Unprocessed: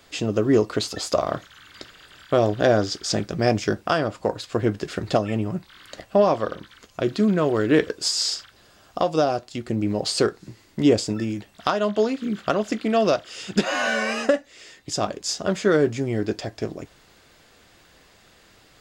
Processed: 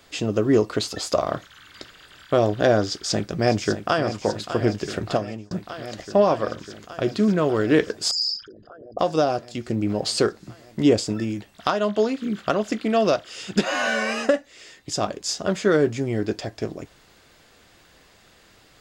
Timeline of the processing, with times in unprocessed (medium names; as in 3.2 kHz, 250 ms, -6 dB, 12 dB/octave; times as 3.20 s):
2.87–4.05 s: echo throw 600 ms, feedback 80%, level -10.5 dB
5.03–5.51 s: fade out
8.11–8.99 s: resonances exaggerated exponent 3